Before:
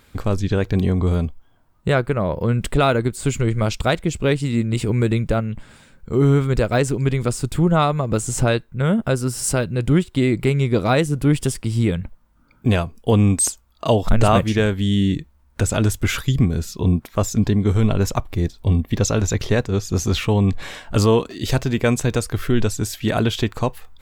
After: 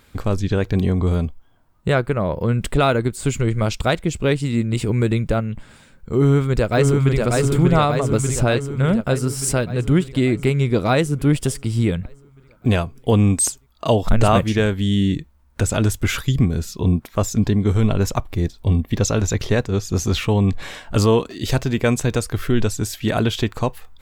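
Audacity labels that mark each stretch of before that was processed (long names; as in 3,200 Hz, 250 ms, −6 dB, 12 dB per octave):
6.180000	7.170000	delay throw 590 ms, feedback 65%, level −2.5 dB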